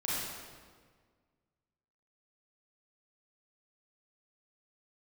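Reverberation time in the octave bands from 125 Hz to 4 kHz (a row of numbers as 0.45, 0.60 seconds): 2.0, 2.0, 1.8, 1.6, 1.4, 1.2 seconds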